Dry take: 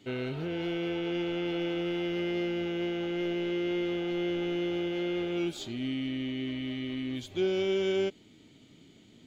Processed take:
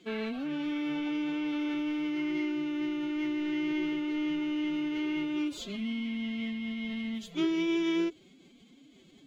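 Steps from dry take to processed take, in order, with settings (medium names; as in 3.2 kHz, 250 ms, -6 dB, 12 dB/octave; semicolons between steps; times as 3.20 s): hum notches 60/120/180 Hz; formant-preserving pitch shift +9.5 st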